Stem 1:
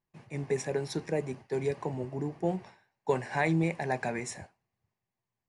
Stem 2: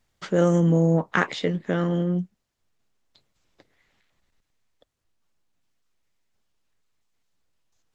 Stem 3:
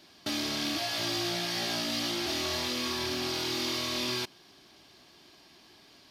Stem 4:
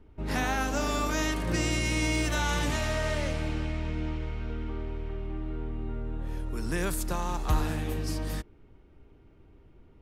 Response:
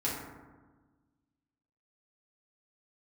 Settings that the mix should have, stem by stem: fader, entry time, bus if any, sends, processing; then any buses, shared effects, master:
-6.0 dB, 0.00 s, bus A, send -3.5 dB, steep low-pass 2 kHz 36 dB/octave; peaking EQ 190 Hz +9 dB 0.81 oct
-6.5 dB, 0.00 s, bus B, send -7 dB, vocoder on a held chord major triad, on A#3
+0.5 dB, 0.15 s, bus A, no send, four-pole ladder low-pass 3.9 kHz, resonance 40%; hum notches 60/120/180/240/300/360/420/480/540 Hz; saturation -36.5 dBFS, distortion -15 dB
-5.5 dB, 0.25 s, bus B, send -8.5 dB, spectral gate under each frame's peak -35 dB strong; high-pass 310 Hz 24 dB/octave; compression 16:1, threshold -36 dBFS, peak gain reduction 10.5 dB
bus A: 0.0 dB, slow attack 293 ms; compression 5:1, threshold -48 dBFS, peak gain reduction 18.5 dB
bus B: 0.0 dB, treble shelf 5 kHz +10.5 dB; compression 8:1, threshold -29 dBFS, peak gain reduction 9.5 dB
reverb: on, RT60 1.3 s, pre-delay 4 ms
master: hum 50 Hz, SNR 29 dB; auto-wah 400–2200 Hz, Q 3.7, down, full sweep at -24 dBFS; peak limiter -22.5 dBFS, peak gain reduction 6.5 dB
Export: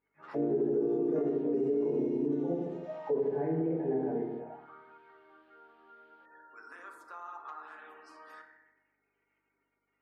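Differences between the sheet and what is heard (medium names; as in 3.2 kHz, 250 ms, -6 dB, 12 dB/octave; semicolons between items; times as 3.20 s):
stem 2 -6.5 dB -> -12.5 dB; stem 4: entry 0.25 s -> 0.00 s; reverb return +7.0 dB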